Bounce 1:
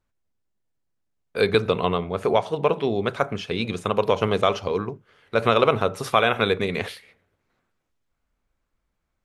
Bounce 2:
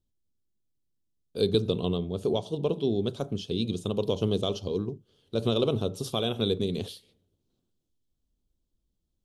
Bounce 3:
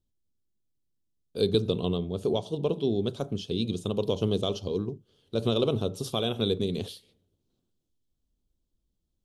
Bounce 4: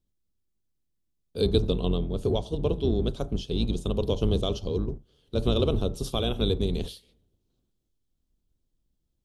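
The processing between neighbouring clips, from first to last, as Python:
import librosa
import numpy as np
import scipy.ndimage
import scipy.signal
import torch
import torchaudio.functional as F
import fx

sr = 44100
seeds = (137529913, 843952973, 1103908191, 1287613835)

y1 = fx.curve_eq(x, sr, hz=(350.0, 520.0, 2100.0, 3200.0), db=(0, -8, -27, -2))
y1 = F.gain(torch.from_numpy(y1), -1.0).numpy()
y2 = y1
y3 = fx.octave_divider(y2, sr, octaves=2, level_db=2.0)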